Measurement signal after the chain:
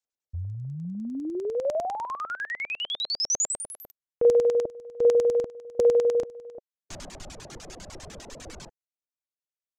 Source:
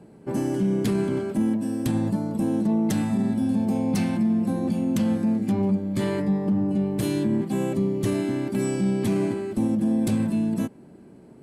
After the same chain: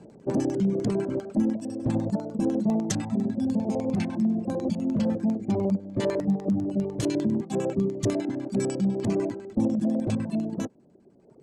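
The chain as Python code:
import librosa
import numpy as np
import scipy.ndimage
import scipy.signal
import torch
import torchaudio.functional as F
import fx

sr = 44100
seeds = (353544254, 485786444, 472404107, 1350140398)

y = fx.dereverb_blind(x, sr, rt60_s=1.9)
y = fx.filter_lfo_lowpass(y, sr, shape='square', hz=10.0, low_hz=600.0, high_hz=6700.0, q=2.5)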